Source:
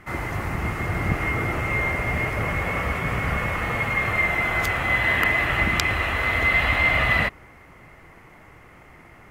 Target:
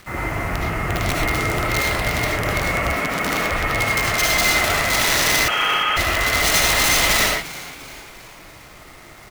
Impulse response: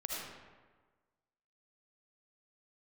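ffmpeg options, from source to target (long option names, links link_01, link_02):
-filter_complex "[0:a]asettb=1/sr,asplit=3[link_01][link_02][link_03];[link_01]atrim=end=4.344[link_04];[link_02]atrim=start=4.34:end=4.8,asetpts=PTS-STARTPTS,afade=type=in:duration=0.004:curve=qsin,afade=type=out:start_time=0.456:duration=0.004:curve=qsin,asplit=2[link_05][link_06];[link_06]adelay=13,volume=-4.5dB[link_07];[link_05][link_07]amix=inputs=2:normalize=0,atrim=end_sample=20286[link_08];[link_03]atrim=start=4.796[link_09];[link_04][link_08]acrossfade=duration=0.004:curve1=hsin:curve2=qsin[link_10];[link_10][link_09]acrossfade=duration=0.004:curve1=qsin:curve2=hsin,aeval=exprs='(mod(5.96*val(0)+1,2)-1)/5.96':channel_layout=same[link_11];[1:a]atrim=start_sample=2205,atrim=end_sample=6174[link_12];[link_11][link_12]afir=irnorm=-1:irlink=0,acrusher=bits=7:mix=0:aa=0.000001,asettb=1/sr,asplit=3[link_13][link_14][link_15];[link_13]atrim=end=2.964[link_16];[link_14]atrim=start=2.96:end=3.51,asetpts=PTS-STARTPTS,afade=type=in:duration=0.004:curve=qsin,afade=type=out:start_time=0.546:duration=0.004:curve=qsin,lowshelf=frequency=150:width_type=q:width=1.5:gain=-11[link_17];[link_15]atrim=start=3.506[link_18];[link_16][link_17]acrossfade=duration=0.004:curve1=hsin:curve2=qsin[link_19];[link_19][link_18]acrossfade=duration=0.004:curve1=qsin:curve2=hsin,asettb=1/sr,asplit=3[link_20][link_21][link_22];[link_20]atrim=end=5.484[link_23];[link_21]atrim=start=5.48:end=5.97,asetpts=PTS-STARTPTS,afade=type=in:duration=0.004:curve=qsin,afade=type=out:start_time=0.486:duration=0.004:curve=qsin,lowpass=frequency=2800:width_type=q:width=0.5098,lowpass=frequency=2800:width_type=q:width=0.6013,lowpass=frequency=2800:width_type=q:width=0.9,lowpass=frequency=2800:width_type=q:width=2.563,afreqshift=-3300[link_24];[link_22]atrim=start=5.966[link_25];[link_23][link_24]acrossfade=duration=0.004:curve1=hsin:curve2=qsin[link_26];[link_26][link_25]acrossfade=duration=0.004:curve1=qsin:curve2=hsin,asplit=5[link_27][link_28][link_29][link_30][link_31];[link_28]adelay=347,afreqshift=120,volume=-17.5dB[link_32];[link_29]adelay=694,afreqshift=240,volume=-23.3dB[link_33];[link_30]adelay=1041,afreqshift=360,volume=-29.2dB[link_34];[link_31]adelay=1388,afreqshift=480,volume=-35dB[link_35];[link_27][link_32][link_33][link_34][link_35]amix=inputs=5:normalize=0,volume=4dB"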